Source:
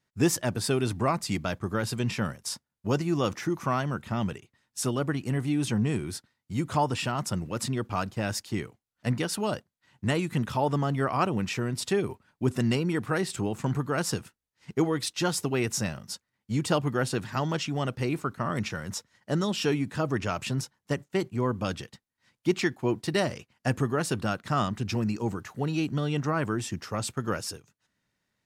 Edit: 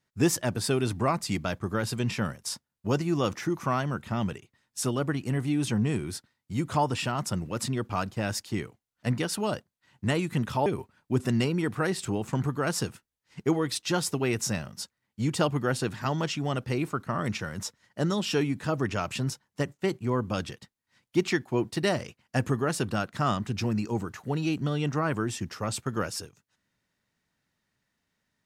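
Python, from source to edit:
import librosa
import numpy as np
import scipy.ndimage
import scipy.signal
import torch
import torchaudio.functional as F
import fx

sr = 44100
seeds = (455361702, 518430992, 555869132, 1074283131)

y = fx.edit(x, sr, fx.cut(start_s=10.66, length_s=1.31), tone=tone)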